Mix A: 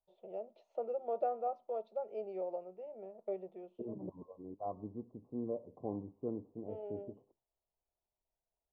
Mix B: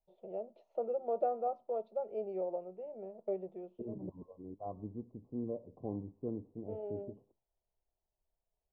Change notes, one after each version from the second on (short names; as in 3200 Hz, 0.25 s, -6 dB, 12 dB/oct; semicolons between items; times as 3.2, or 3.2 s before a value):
second voice -4.0 dB; master: add tilt -2.5 dB/oct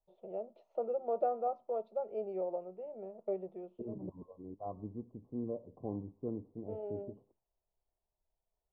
master: add bell 1200 Hz +3.5 dB 0.73 oct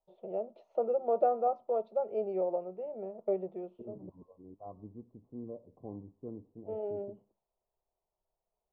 first voice +5.0 dB; second voice -4.5 dB